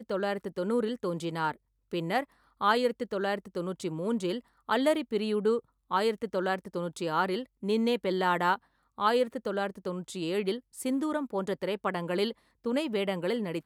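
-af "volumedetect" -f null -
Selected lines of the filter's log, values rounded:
mean_volume: -30.5 dB
max_volume: -12.9 dB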